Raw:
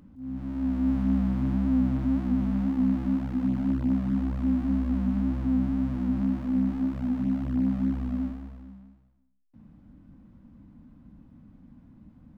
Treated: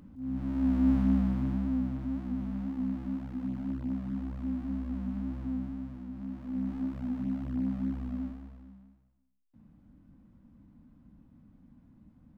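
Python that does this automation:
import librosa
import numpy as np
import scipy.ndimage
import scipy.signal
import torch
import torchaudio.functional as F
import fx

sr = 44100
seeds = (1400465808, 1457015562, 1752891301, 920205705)

y = fx.gain(x, sr, db=fx.line((0.93, 0.5), (1.97, -8.5), (5.48, -8.5), (6.11, -15.0), (6.76, -6.0)))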